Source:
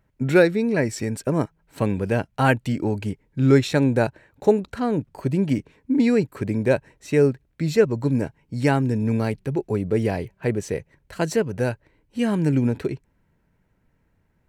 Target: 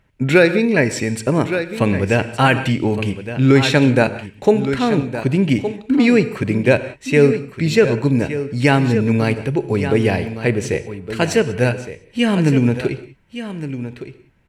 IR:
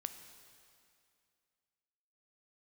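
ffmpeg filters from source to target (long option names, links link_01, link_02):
-filter_complex "[0:a]equalizer=frequency=2700:width=1.2:gain=8.5,aecho=1:1:1165:0.266,asplit=2[link_01][link_02];[1:a]atrim=start_sample=2205,atrim=end_sample=4410,asetrate=22491,aresample=44100[link_03];[link_02][link_03]afir=irnorm=-1:irlink=0,volume=7dB[link_04];[link_01][link_04]amix=inputs=2:normalize=0,alimiter=level_in=-4.5dB:limit=-1dB:release=50:level=0:latency=1,volume=-1dB"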